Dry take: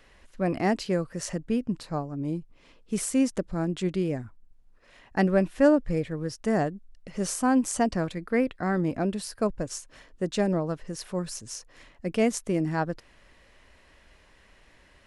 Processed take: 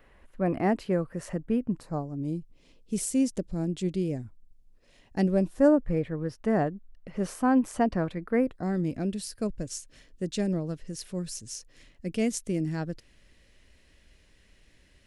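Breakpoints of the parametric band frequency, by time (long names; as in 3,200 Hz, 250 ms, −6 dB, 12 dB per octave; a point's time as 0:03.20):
parametric band −13.5 dB 1.8 octaves
0:01.66 5,600 Hz
0:02.23 1,300 Hz
0:05.31 1,300 Hz
0:05.97 7,100 Hz
0:08.26 7,100 Hz
0:08.78 990 Hz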